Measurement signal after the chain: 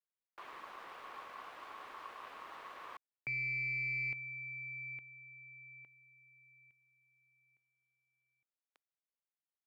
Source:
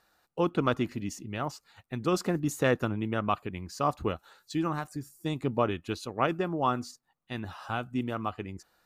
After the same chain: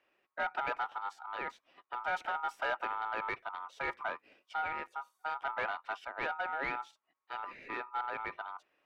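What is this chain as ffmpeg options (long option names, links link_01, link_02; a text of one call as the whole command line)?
ffmpeg -i in.wav -filter_complex "[0:a]aeval=exprs='val(0)*sin(2*PI*1100*n/s)':channel_layout=same,aeval=exprs='(tanh(22.4*val(0)+0.2)-tanh(0.2))/22.4':channel_layout=same,acrossover=split=310 3200:gain=0.158 1 0.0891[link_01][link_02][link_03];[link_01][link_02][link_03]amix=inputs=3:normalize=0" out.wav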